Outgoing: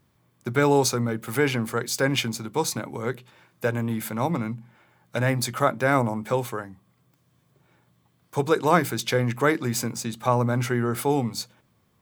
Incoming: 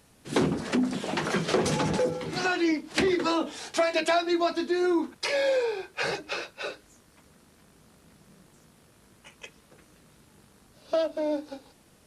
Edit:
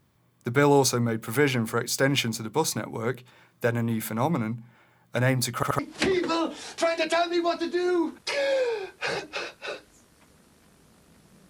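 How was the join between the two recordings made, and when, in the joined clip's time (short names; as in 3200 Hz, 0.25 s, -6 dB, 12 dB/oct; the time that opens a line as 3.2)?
outgoing
5.55 stutter in place 0.08 s, 3 plays
5.79 switch to incoming from 2.75 s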